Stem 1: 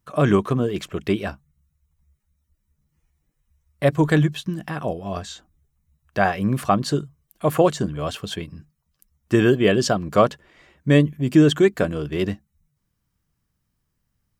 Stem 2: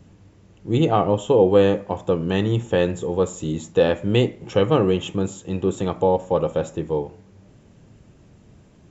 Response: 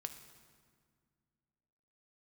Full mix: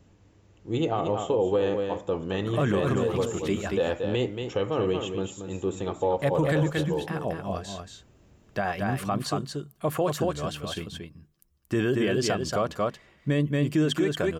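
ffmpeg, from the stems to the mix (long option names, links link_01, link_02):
-filter_complex "[0:a]adynamicequalizer=threshold=0.0316:dfrequency=230:dqfactor=0.82:tfrequency=230:tqfactor=0.82:attack=5:release=100:ratio=0.375:range=2.5:mode=cutabove:tftype=bell,adelay=2400,volume=-5dB,asplit=3[link_01][link_02][link_03];[link_02]volume=-23.5dB[link_04];[link_03]volume=-5dB[link_05];[1:a]equalizer=frequency=160:width_type=o:width=1.2:gain=-6,volume=-5.5dB,asplit=2[link_06][link_07];[link_07]volume=-8.5dB[link_08];[2:a]atrim=start_sample=2205[link_09];[link_04][link_09]afir=irnorm=-1:irlink=0[link_10];[link_05][link_08]amix=inputs=2:normalize=0,aecho=0:1:229:1[link_11];[link_01][link_06][link_10][link_11]amix=inputs=4:normalize=0,alimiter=limit=-15.5dB:level=0:latency=1:release=42"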